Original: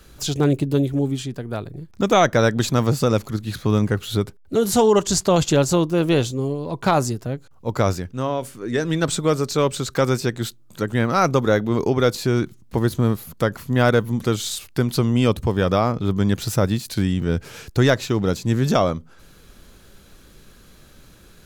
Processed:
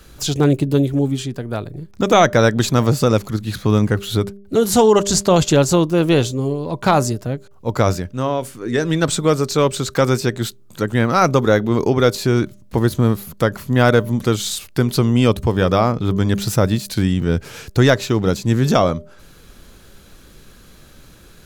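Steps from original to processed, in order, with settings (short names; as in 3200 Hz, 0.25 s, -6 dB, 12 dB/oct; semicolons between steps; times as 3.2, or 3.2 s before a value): de-hum 199.5 Hz, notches 3; gain +3.5 dB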